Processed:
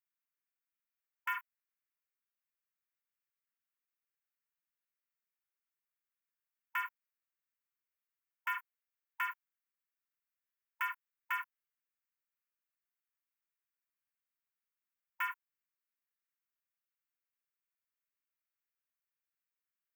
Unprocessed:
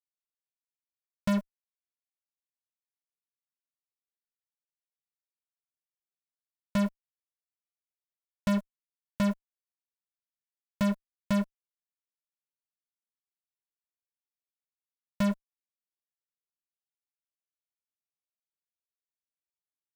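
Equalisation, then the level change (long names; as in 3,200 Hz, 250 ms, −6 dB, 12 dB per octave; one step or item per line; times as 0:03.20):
linear-phase brick-wall high-pass 920 Hz
flat-topped bell 6,400 Hz −15.5 dB
phaser with its sweep stopped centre 1,700 Hz, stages 4
+5.0 dB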